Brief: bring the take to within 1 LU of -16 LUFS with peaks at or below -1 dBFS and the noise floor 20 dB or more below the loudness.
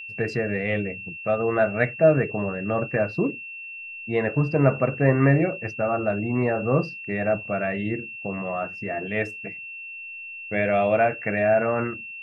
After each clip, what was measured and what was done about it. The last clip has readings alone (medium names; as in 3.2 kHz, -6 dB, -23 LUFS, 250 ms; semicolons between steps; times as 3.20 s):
steady tone 2.7 kHz; tone level -35 dBFS; loudness -24.0 LUFS; peak level -5.5 dBFS; loudness target -16.0 LUFS
-> band-stop 2.7 kHz, Q 30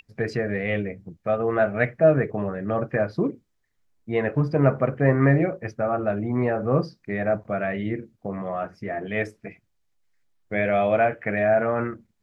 steady tone not found; loudness -24.5 LUFS; peak level -5.5 dBFS; loudness target -16.0 LUFS
-> trim +8.5 dB; peak limiter -1 dBFS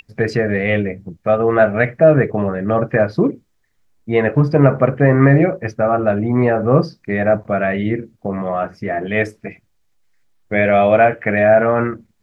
loudness -16.5 LUFS; peak level -1.0 dBFS; noise floor -63 dBFS